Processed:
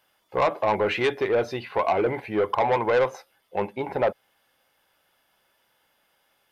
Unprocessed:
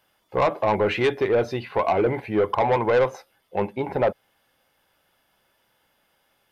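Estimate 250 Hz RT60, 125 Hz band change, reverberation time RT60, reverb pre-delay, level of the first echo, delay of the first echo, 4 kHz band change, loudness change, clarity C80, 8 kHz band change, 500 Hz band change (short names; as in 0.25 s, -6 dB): none, -5.5 dB, none, none, none, none, 0.0 dB, -1.5 dB, none, n/a, -2.0 dB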